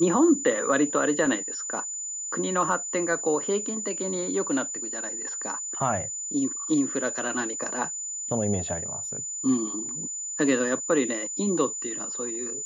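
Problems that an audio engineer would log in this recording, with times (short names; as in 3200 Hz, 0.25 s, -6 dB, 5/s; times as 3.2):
tone 7000 Hz -31 dBFS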